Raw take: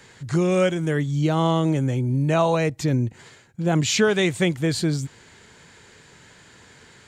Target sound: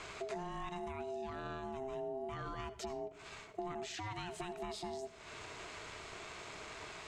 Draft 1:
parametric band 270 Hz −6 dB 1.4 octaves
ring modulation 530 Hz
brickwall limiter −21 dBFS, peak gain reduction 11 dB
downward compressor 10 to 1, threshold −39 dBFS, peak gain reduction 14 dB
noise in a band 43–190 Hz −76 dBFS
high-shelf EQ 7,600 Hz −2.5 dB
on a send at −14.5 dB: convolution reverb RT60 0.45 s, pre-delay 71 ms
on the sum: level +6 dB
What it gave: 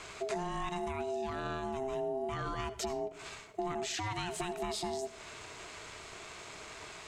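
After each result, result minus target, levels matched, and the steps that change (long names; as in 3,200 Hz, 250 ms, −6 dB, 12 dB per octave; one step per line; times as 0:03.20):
downward compressor: peak gain reduction −6 dB; 8,000 Hz band +3.0 dB
change: downward compressor 10 to 1, threshold −45.5 dBFS, peak gain reduction 20 dB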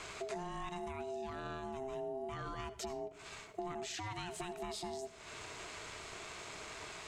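8,000 Hz band +4.0 dB
change: high-shelf EQ 7,600 Hz −12 dB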